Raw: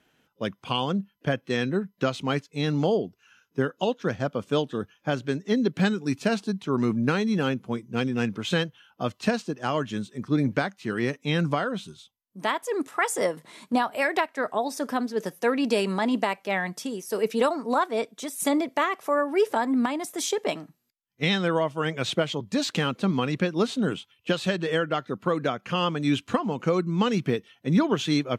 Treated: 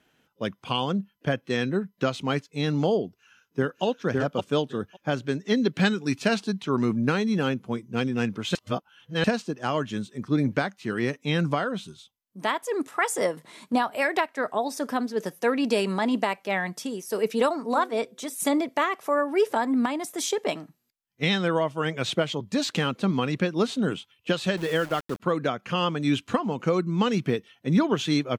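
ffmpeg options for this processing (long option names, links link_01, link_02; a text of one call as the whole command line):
ffmpeg -i in.wav -filter_complex "[0:a]asplit=2[link_01][link_02];[link_02]afade=type=in:start_time=3.05:duration=0.01,afade=type=out:start_time=3.84:duration=0.01,aecho=0:1:560|1120:0.794328|0.0794328[link_03];[link_01][link_03]amix=inputs=2:normalize=0,asettb=1/sr,asplit=3[link_04][link_05][link_06];[link_04]atrim=end=5.394[link_07];[link_05]atrim=start=5.39:end=6.79,asetpts=PTS-STARTPTS,afade=type=in:duration=0.004:curve=qsin,afade=type=out:start_time=1.396:duration=0.004:curve=qsin,equalizer=frequency=3000:width=0.46:gain=4.5[link_08];[link_06]atrim=start=6.786[link_09];[link_07][link_08]acrossfade=duration=0.004:curve1=hsin:curve2=qsin[link_10];[link_10][link_09]acrossfade=duration=0.004:curve1=qsin:curve2=hsin,asettb=1/sr,asplit=3[link_11][link_12][link_13];[link_11]atrim=end=17.594[link_14];[link_12]atrim=start=17.59:end=18.34,asetpts=PTS-STARTPTS,afade=type=in:duration=0.004:curve=qsin,afade=type=out:start_time=0.746:duration=0.004:curve=qsin,bandreject=frequency=126.5:width_type=h:width=4,bandreject=frequency=253:width_type=h:width=4,bandreject=frequency=379.5:width_type=h:width=4,bandreject=frequency=506:width_type=h:width=4[link_15];[link_13]atrim=start=18.336[link_16];[link_14][link_15]acrossfade=duration=0.004:curve1=hsin:curve2=qsin[link_17];[link_17][link_16]acrossfade=duration=0.004:curve1=qsin:curve2=hsin,asettb=1/sr,asplit=3[link_18][link_19][link_20];[link_18]atrim=end=24.574[link_21];[link_19]atrim=start=24.57:end=25.2,asetpts=PTS-STARTPTS,afade=type=in:duration=0.004:curve=qsin,afade=type=out:start_time=0.626:duration=0.004:curve=qsin,aeval=exprs='val(0)*gte(abs(val(0)),0.0168)':channel_layout=same[link_22];[link_20]atrim=start=25.196[link_23];[link_21][link_22]acrossfade=duration=0.004:curve1=hsin:curve2=qsin[link_24];[link_24][link_23]acrossfade=duration=0.004:curve1=qsin:curve2=hsin,asplit=3[link_25][link_26][link_27];[link_25]atrim=end=8.552[link_28];[link_26]atrim=start=8.548:end=9.242,asetpts=PTS-STARTPTS,areverse[link_29];[link_27]atrim=start=9.238[link_30];[link_28][link_29]acrossfade=duration=0.004:curve1=hsin:curve2=hsin[link_31];[link_31][link_30]acrossfade=duration=0.004:curve1=hsin:curve2=hsin" out.wav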